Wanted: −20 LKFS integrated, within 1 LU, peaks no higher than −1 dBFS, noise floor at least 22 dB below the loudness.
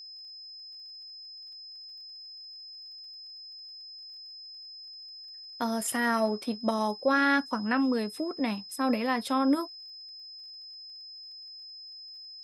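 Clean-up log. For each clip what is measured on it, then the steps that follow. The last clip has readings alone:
crackle rate 38 per second; interfering tone 5,100 Hz; level of the tone −43 dBFS; integrated loudness −28.0 LKFS; sample peak −13.5 dBFS; target loudness −20.0 LKFS
→ click removal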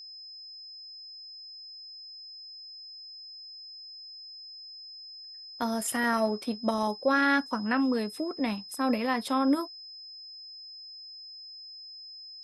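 crackle rate 0.080 per second; interfering tone 5,100 Hz; level of the tone −43 dBFS
→ notch filter 5,100 Hz, Q 30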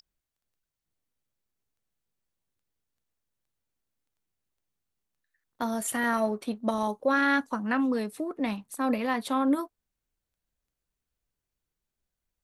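interfering tone none found; integrated loudness −28.5 LKFS; sample peak −14.0 dBFS; target loudness −20.0 LKFS
→ level +8.5 dB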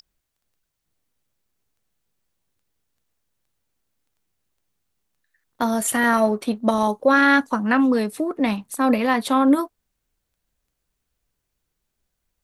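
integrated loudness −20.0 LKFS; sample peak −5.5 dBFS; background noise floor −79 dBFS

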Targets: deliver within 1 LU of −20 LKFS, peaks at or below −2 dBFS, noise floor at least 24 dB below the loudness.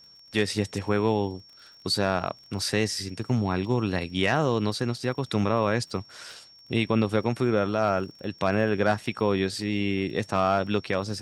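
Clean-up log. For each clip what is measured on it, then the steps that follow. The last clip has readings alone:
crackle rate 32 per second; interfering tone 5,500 Hz; level of the tone −50 dBFS; integrated loudness −26.5 LKFS; sample peak −9.0 dBFS; target loudness −20.0 LKFS
→ click removal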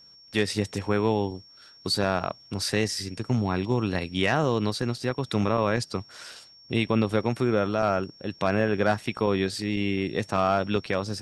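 crackle rate 0 per second; interfering tone 5,500 Hz; level of the tone −50 dBFS
→ notch filter 5,500 Hz, Q 30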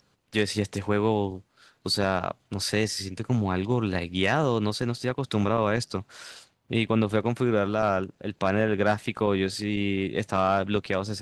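interfering tone none found; integrated loudness −26.5 LKFS; sample peak −9.0 dBFS; target loudness −20.0 LKFS
→ level +6.5 dB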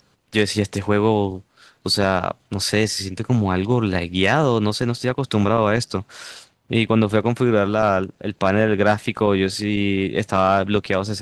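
integrated loudness −20.0 LKFS; sample peak −2.5 dBFS; background noise floor −61 dBFS

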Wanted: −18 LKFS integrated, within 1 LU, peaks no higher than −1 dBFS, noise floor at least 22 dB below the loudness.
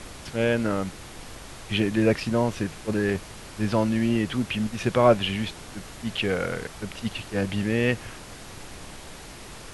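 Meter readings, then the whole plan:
background noise floor −42 dBFS; target noise floor −48 dBFS; integrated loudness −26.0 LKFS; sample peak −6.0 dBFS; target loudness −18.0 LKFS
→ noise reduction from a noise print 6 dB
level +8 dB
brickwall limiter −1 dBFS

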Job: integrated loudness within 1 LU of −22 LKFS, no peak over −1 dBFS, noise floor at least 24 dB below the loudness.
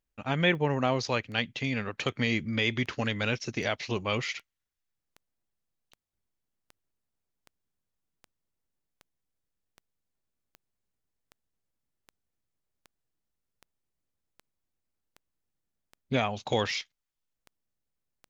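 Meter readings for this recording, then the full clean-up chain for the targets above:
number of clicks 24; integrated loudness −29.5 LKFS; sample peak −11.5 dBFS; target loudness −22.0 LKFS
→ click removal
level +7.5 dB

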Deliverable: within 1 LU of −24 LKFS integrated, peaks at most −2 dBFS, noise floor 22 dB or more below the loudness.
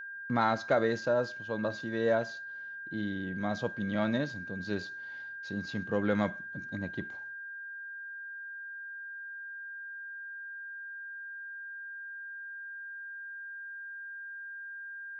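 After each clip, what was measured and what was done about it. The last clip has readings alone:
interfering tone 1,600 Hz; level of the tone −40 dBFS; integrated loudness −35.5 LKFS; sample peak −14.5 dBFS; target loudness −24.0 LKFS
→ notch filter 1,600 Hz, Q 30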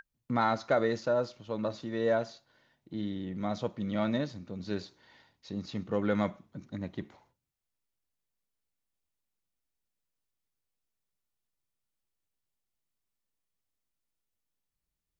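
interfering tone none found; integrated loudness −33.0 LKFS; sample peak −14.5 dBFS; target loudness −24.0 LKFS
→ level +9 dB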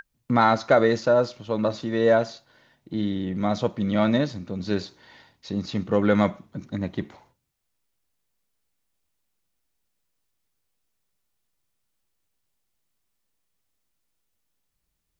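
integrated loudness −24.0 LKFS; sample peak −5.5 dBFS; background noise floor −77 dBFS

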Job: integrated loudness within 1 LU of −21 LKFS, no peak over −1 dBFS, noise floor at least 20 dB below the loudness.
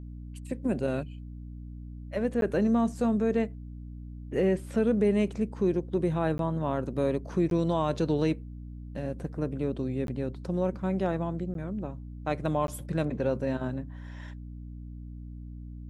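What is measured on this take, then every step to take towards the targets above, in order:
number of dropouts 6; longest dropout 12 ms; mains hum 60 Hz; hum harmonics up to 300 Hz; level of the hum −39 dBFS; integrated loudness −29.5 LKFS; sample peak −14.5 dBFS; target loudness −21.0 LKFS
→ repair the gap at 0:02.41/0:06.38/0:07.50/0:10.07/0:11.54/0:12.67, 12 ms
hum removal 60 Hz, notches 5
level +8.5 dB

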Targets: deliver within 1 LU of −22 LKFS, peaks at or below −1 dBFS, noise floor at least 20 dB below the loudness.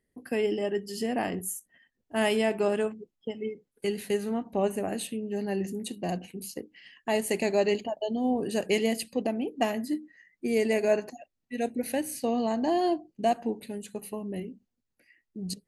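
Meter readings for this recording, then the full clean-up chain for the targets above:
integrated loudness −30.0 LKFS; sample peak −12.5 dBFS; target loudness −22.0 LKFS
→ level +8 dB

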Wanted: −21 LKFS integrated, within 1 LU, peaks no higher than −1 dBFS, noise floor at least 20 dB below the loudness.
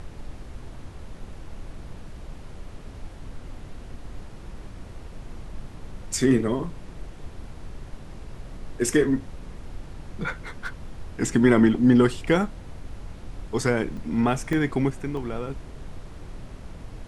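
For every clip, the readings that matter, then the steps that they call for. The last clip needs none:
number of dropouts 3; longest dropout 2.0 ms; background noise floor −42 dBFS; target noise floor −44 dBFS; integrated loudness −24.0 LKFS; sample peak −5.5 dBFS; target loudness −21.0 LKFS
→ repair the gap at 0:13.97/0:14.53/0:15.17, 2 ms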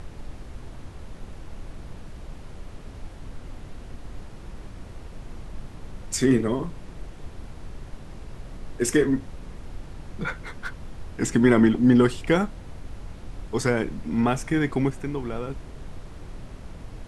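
number of dropouts 0; background noise floor −42 dBFS; target noise floor −44 dBFS
→ noise reduction from a noise print 6 dB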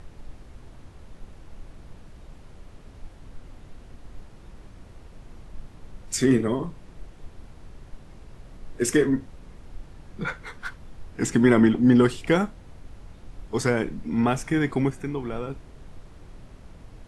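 background noise floor −47 dBFS; integrated loudness −23.5 LKFS; sample peak −5.5 dBFS; target loudness −21.0 LKFS
→ level +2.5 dB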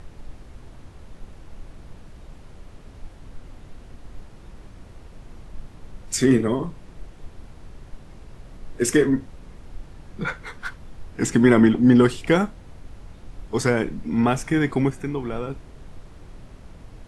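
integrated loudness −21.0 LKFS; sample peak −3.0 dBFS; background noise floor −45 dBFS

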